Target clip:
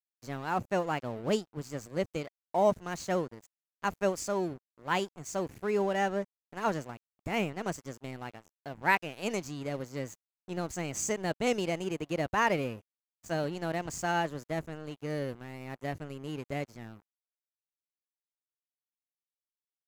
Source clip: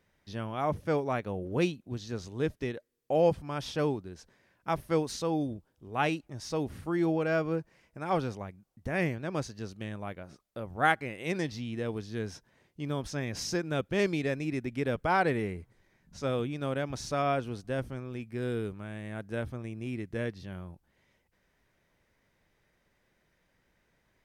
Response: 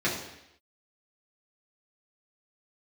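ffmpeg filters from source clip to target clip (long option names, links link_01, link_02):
-af "asetrate=53802,aresample=44100,superequalizer=13b=0.562:15b=1.78,aeval=exprs='sgn(val(0))*max(abs(val(0))-0.00473,0)':channel_layout=same"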